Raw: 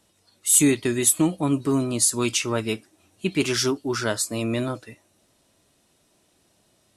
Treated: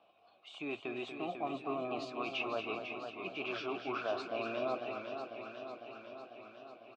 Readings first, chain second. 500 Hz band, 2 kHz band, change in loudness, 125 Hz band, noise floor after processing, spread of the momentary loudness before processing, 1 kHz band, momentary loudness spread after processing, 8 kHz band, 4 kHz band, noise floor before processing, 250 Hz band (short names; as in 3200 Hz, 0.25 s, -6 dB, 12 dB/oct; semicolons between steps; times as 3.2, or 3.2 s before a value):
-10.5 dB, -10.0 dB, -17.5 dB, -26.0 dB, -66 dBFS, 13 LU, -5.0 dB, 13 LU, under -40 dB, -15.5 dB, -65 dBFS, -19.0 dB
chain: LPF 3900 Hz 24 dB/oct; reverse; compressor 6:1, threshold -30 dBFS, peak gain reduction 14.5 dB; reverse; limiter -25 dBFS, peak gain reduction 6 dB; vowel filter a; on a send: echo 0.238 s -8.5 dB; on the sum: warbling echo 0.499 s, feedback 68%, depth 89 cents, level -7.5 dB; gain +12 dB